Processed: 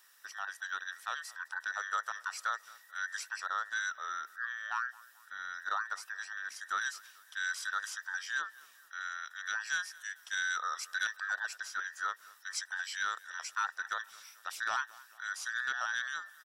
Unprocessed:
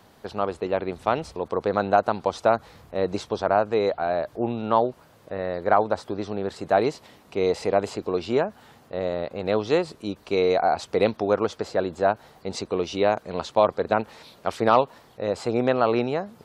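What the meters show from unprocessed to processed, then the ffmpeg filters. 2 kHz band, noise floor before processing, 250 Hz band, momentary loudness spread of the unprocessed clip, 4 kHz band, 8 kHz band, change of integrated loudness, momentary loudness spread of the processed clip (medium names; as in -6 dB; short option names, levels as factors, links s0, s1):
+2.0 dB, -54 dBFS, under -40 dB, 10 LU, -5.0 dB, no reading, -12.0 dB, 9 LU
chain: -filter_complex "[0:a]afftfilt=real='real(if(between(b,1,1012),(2*floor((b-1)/92)+1)*92-b,b),0)':imag='imag(if(between(b,1,1012),(2*floor((b-1)/92)+1)*92-b,b),0)*if(between(b,1,1012),-1,1)':win_size=2048:overlap=0.75,aderivative,asplit=2[s0][s1];[s1]adelay=219,lowpass=f=4600:p=1,volume=0.0794,asplit=2[s2][s3];[s3]adelay=219,lowpass=f=4600:p=1,volume=0.5,asplit=2[s4][s5];[s5]adelay=219,lowpass=f=4600:p=1,volume=0.5[s6];[s0][s2][s4][s6]amix=inputs=4:normalize=0,asoftclip=type=tanh:threshold=0.0944"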